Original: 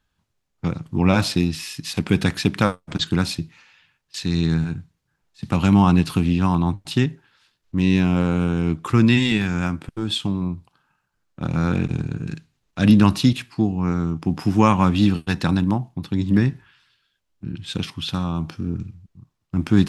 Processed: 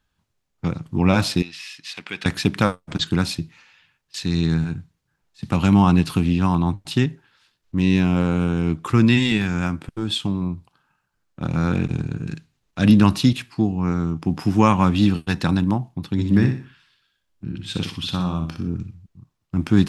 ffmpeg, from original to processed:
-filter_complex "[0:a]asettb=1/sr,asplit=3[a][b][c];[a]atrim=end=1.424[d];[b]atrim=start=1.42:end=2.26,asetpts=PTS-STARTPTS,afade=t=in:d=0.004:c=qsin,afade=t=out:st=0.836:d=0.004:c=qsin,bandpass=f=2.4k:t=q:w=0.88[e];[c]atrim=start=2.256[f];[d][e]acrossfade=d=0.004:c1=hsin:c2=qsin[g];[g][f]acrossfade=d=0.004:c1=qsin:c2=hsin,asettb=1/sr,asplit=3[h][i][j];[h]atrim=end=16.124[k];[i]atrim=start=16.12:end=18.68,asetpts=PTS-STARTPTS,afade=t=in:d=0.004:c=qsin,afade=t=out:st=2.556:d=0.004:c=qsin,aecho=1:1:61|122|183|244:0.422|0.143|0.0487|0.0166,atrim=end_sample=112896[l];[j]atrim=start=18.676[m];[k][l]acrossfade=d=0.004:c1=hsin:c2=qsin[n];[n][m]acrossfade=d=0.004:c1=qsin:c2=hsin"

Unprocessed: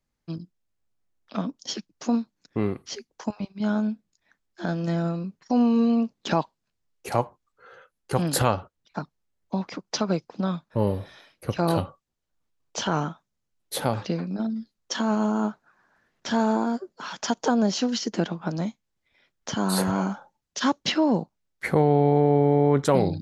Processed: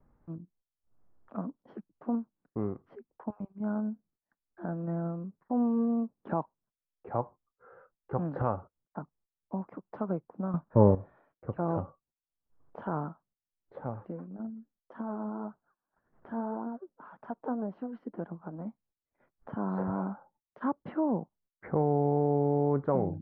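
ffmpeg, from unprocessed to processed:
-filter_complex "[0:a]asplit=3[a][b][c];[a]afade=t=out:st=13.75:d=0.02[d];[b]flanger=delay=0.2:depth=4:regen=61:speed=1.8:shape=triangular,afade=t=in:st=13.75:d=0.02,afade=t=out:st=18.65:d=0.02[e];[c]afade=t=in:st=18.65:d=0.02[f];[d][e][f]amix=inputs=3:normalize=0,asplit=3[g][h][i];[g]atrim=end=10.542[j];[h]atrim=start=10.538:end=10.952,asetpts=PTS-STARTPTS,volume=10.5dB[k];[i]atrim=start=10.948[l];[j][k]acrossfade=d=0.004:c1=hsin:c2=hsin[m];[m][l]acrossfade=d=0.004:c1=hsin:c2=hsin,acompressor=mode=upward:threshold=-38dB:ratio=2.5,lowpass=f=1.3k:w=0.5412,lowpass=f=1.3k:w=1.3066,agate=range=-19dB:threshold=-59dB:ratio=16:detection=peak,volume=-7.5dB"

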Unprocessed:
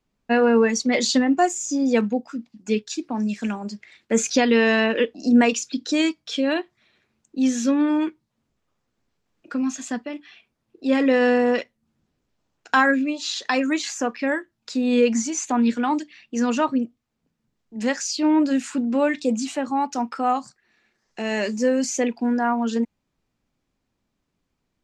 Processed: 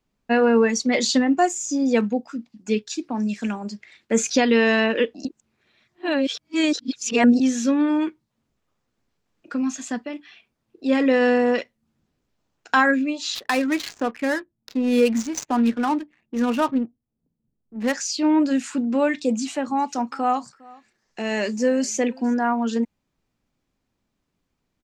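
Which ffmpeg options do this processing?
-filter_complex "[0:a]asettb=1/sr,asplit=3[a][b][c];[a]atrim=end=13.354[d];[b]atrim=start=13.35:end=17.93,asetpts=PTS-STARTPTS,afade=t=in:d=0.004:c=qsin,afade=t=out:st=4.576:d=0.004:c=qsin,adynamicsmooth=sensitivity=6:basefreq=510[e];[c]atrim=start=17.926[f];[d][e]acrossfade=d=0.004:c1=hsin:c2=qsin[g];[g][f]acrossfade=d=0.004:c1=qsin:c2=hsin,asplit=3[h][i][j];[h]afade=t=out:st=19.7:d=0.02[k];[i]aecho=1:1:407:0.0668,afade=t=in:st=19.7:d=0.02,afade=t=out:st=22.33:d=0.02[l];[j]afade=t=in:st=22.33:d=0.02[m];[k][l][m]amix=inputs=3:normalize=0,asplit=3[n][o][p];[n]atrim=end=5.252[q];[o]atrim=start=5.248:end=7.402,asetpts=PTS-STARTPTS,areverse[r];[p]atrim=start=7.398[s];[q][r]acrossfade=d=0.004:c1=hsin:c2=hsin[t];[t][s]acrossfade=d=0.004:c1=hsin:c2=hsin"

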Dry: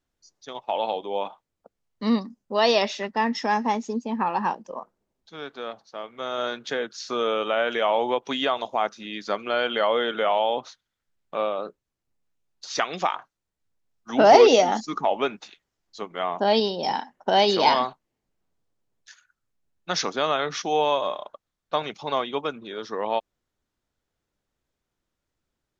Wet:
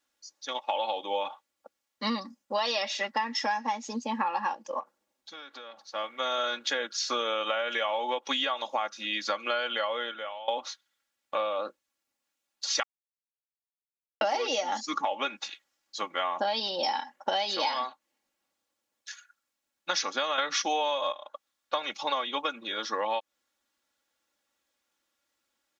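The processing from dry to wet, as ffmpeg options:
-filter_complex "[0:a]asettb=1/sr,asplit=3[a][b][c];[a]atrim=end=4.804[d];[b]atrim=start=4.8:end=5.82,asetpts=PTS-STARTPTS,afade=t=in:d=0.004:c=qsin,afade=t=out:st=1.016:d=0.004:c=qsin,acompressor=threshold=-43dB:ratio=6:attack=3.2:release=140:knee=1:detection=peak[e];[c]atrim=start=5.816[f];[d][e]acrossfade=d=0.004:c1=hsin:c2=qsin[g];[g][f]acrossfade=d=0.004:c1=qsin:c2=hsin,asplit=6[h][i][j][k][l][m];[h]atrim=end=10.48,asetpts=PTS-STARTPTS,afade=t=out:st=9.66:d=0.82:c=qua:silence=0.0749894[n];[i]atrim=start=10.48:end=12.83,asetpts=PTS-STARTPTS,afade=t=in:d=0.004:c=hsin:silence=0.0749894,afade=t=out:st=2.346:d=0.004:c=hsin[o];[j]atrim=start=12.83:end=14.21,asetpts=PTS-STARTPTS,volume=0[p];[k]atrim=start=14.21:end=20.382,asetpts=PTS-STARTPTS,afade=t=in:d=0.004:c=hsin[q];[l]atrim=start=20.378:end=21.122,asetpts=PTS-STARTPTS,volume=11dB[r];[m]atrim=start=21.118[s];[n][o][p][q]concat=n=4:v=0:a=1[t];[t][r]acrossfade=d=0.004:c1=hsin:c2=hsin[u];[u][s]acrossfade=d=0.004:c1=hsin:c2=hsin,highpass=f=1.1k:p=1,aecho=1:1:3.6:0.7,acompressor=threshold=-31dB:ratio=12,volume=5.5dB"

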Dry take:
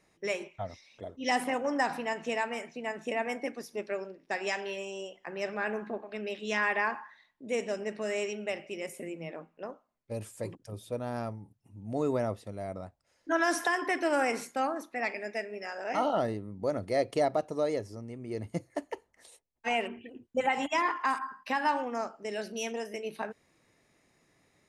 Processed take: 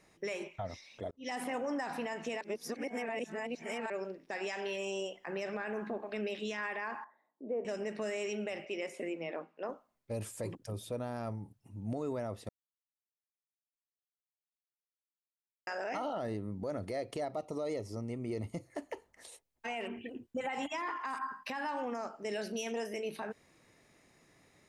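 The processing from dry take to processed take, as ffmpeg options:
-filter_complex "[0:a]asettb=1/sr,asplit=3[a][b][c];[a]atrim=end=7.044[d];[b]atrim=start=7.04:end=7.65,asetpts=PTS-STARTPTS,afade=t=in:d=0.004:c=qsin,afade=t=out:st=0.606:d=0.004:c=qsin,asuperpass=centerf=460:order=4:qfactor=0.79[e];[c]atrim=start=7.646[f];[d][e]acrossfade=d=0.004:c1=hsin:c2=qsin[g];[g][f]acrossfade=d=0.004:c1=qsin:c2=hsin,asettb=1/sr,asplit=3[h][i][j];[h]atrim=end=8.654[k];[i]atrim=start=8.65:end=9.69,asetpts=PTS-STARTPTS,afade=t=in:d=0.004:c=qsin,afade=t=out:st=1.036:d=0.004:c=qsin,highpass=280,lowpass=5.3k[l];[j]atrim=start=9.686[m];[k][l]acrossfade=d=0.004:c1=hsin:c2=qsin[n];[n][m]acrossfade=d=0.004:c1=qsin:c2=hsin,asettb=1/sr,asplit=3[o][p][q];[o]atrim=end=17.324[r];[p]atrim=start=17.32:end=18.64,asetpts=PTS-STARTPTS,afade=t=in:d=0.004:c=qsin,afade=t=out:st=1.316:d=0.004:c=qsin,asuperstop=centerf=1600:order=12:qfactor=4.2[s];[q]atrim=start=18.636[t];[r][s]acrossfade=d=0.004:c1=hsin:c2=qsin[u];[u][t]acrossfade=d=0.004:c1=qsin:c2=hsin,asplit=6[v][w][x][y][z][aa];[v]atrim=end=1.11,asetpts=PTS-STARTPTS,afade=t=out:st=1.106:d=0.004:c=hsin[ab];[w]atrim=start=1.11:end=2.412,asetpts=PTS-STARTPTS,afade=t=in:d=0.47[ac];[x]atrim=start=2.408:end=3.902,asetpts=PTS-STARTPTS,areverse[ad];[y]atrim=start=3.898:end=12.49,asetpts=PTS-STARTPTS,afade=t=out:st=8.588:d=0.004:c=hsin[ae];[z]atrim=start=12.49:end=15.67,asetpts=PTS-STARTPTS,volume=0[af];[aa]atrim=start=15.67,asetpts=PTS-STARTPTS,afade=t=in:d=0.004:c=hsin[ag];[ab][ac]concat=n=2:v=0:a=1[ah];[ah][ad]acrossfade=d=0.004:c1=hsin:c2=hsin[ai];[ae][af][ag]concat=n=3:v=0:a=1[aj];[ai][aj]acrossfade=d=0.004:c1=hsin:c2=hsin,acompressor=threshold=-34dB:ratio=4,alimiter=level_in=7.5dB:limit=-24dB:level=0:latency=1:release=18,volume=-7.5dB,volume=3dB"

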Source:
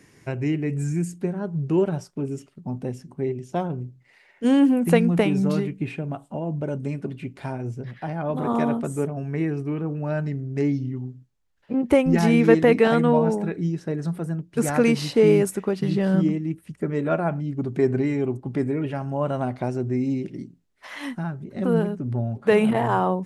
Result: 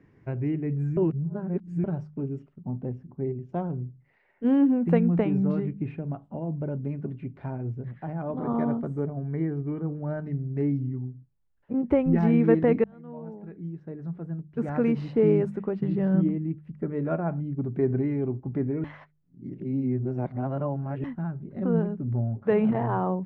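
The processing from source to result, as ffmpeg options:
-filter_complex "[0:a]asettb=1/sr,asplit=3[a][b][c];[a]atrim=end=2.684[d];[b]atrim=start=2.68:end=3.49,asetpts=PTS-STARTPTS,afade=t=in:d=0.004:c=qsin,afade=t=out:st=0.806:d=0.004:c=qsin,highshelf=f=3.1k:g=-9[e];[c]atrim=start=3.486[f];[d][e]acrossfade=d=0.004:c1=hsin:c2=qsin[g];[g][f]acrossfade=d=0.004:c1=qsin:c2=hsin,asettb=1/sr,asplit=3[h][i][j];[h]atrim=end=8.314[k];[i]atrim=start=8.31:end=10.23,asetpts=PTS-STARTPTS,afade=t=in:d=0.004:c=qsin,afade=t=out:st=1.916:d=0.004:c=qsin,asuperstop=centerf=2600:order=12:qfactor=6.7[l];[j]atrim=start=10.226[m];[k][l]acrossfade=d=0.004:c1=hsin:c2=qsin[n];[n][m]acrossfade=d=0.004:c1=qsin:c2=hsin,asplit=6[o][p][q][r][s][t];[o]atrim=end=0.972[u];[p]atrim=start=0.968:end=1.842,asetpts=PTS-STARTPTS,areverse[v];[q]atrim=start=1.838:end=12.84,asetpts=PTS-STARTPTS,afade=t=out:st=10.998:d=0.004:c=hsin[w];[r]atrim=start=12.84:end=18.842,asetpts=PTS-STARTPTS,afade=t=in:d=2.32[x];[s]atrim=start=18.838:end=21.042,asetpts=PTS-STARTPTS,areverse[y];[t]atrim=start=21.038[z];[u][v]acrossfade=d=0.004:c1=hsin:c2=hsin[aa];[w][x]concat=n=2:v=0:a=1[ab];[aa][ab]acrossfade=d=0.004:c1=hsin:c2=hsin[ac];[ac][y]acrossfade=d=0.004:c1=hsin:c2=hsin[ad];[ad][z]acrossfade=d=0.004:c1=hsin:c2=hsin,lowpass=1.7k,lowshelf=f=250:g=8,bandreject=f=50.4:t=h:w=4,bandreject=f=100.8:t=h:w=4,bandreject=f=151.2:t=h:w=4,bandreject=f=201.6:t=h:w=4,volume=-7dB"

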